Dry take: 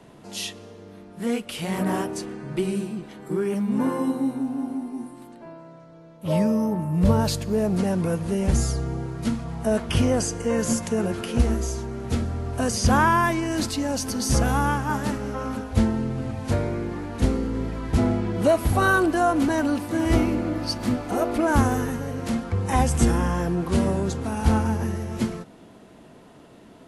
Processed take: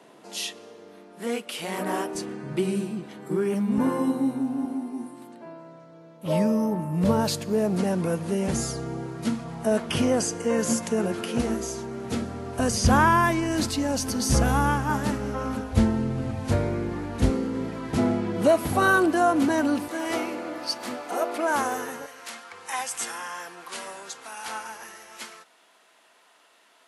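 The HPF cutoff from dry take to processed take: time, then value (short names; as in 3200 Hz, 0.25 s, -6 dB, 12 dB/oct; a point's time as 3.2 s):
320 Hz
from 2.15 s 110 Hz
from 3.78 s 51 Hz
from 4.65 s 170 Hz
from 12.59 s 40 Hz
from 17.3 s 150 Hz
from 19.88 s 510 Hz
from 22.06 s 1200 Hz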